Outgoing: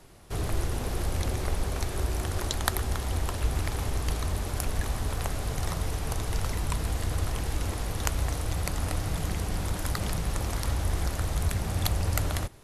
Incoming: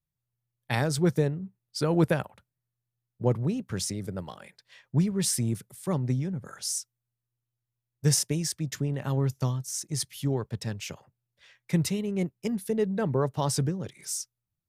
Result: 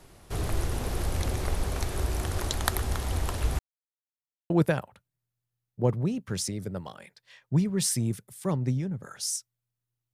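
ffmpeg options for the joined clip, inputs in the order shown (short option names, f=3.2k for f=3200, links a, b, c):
-filter_complex "[0:a]apad=whole_dur=10.13,atrim=end=10.13,asplit=2[a][b];[a]atrim=end=3.59,asetpts=PTS-STARTPTS,afade=t=out:st=3.586:d=0.004:c=hsin[c];[b]atrim=start=3.59:end=4.5,asetpts=PTS-STARTPTS,volume=0[d];[1:a]atrim=start=1.92:end=7.55,asetpts=PTS-STARTPTS,afade=t=in:d=0.004:c=hsin[e];[c][d][e]concat=n=3:v=0:a=1"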